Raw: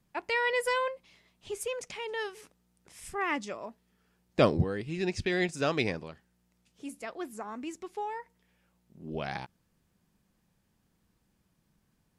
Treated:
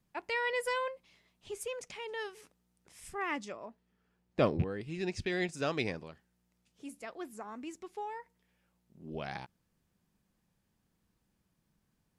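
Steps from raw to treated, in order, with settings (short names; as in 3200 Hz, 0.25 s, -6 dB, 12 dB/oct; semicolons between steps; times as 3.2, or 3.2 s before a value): rattling part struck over -27 dBFS, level -30 dBFS; 3.52–4.81 high shelf 4300 Hz -10 dB; gain -4.5 dB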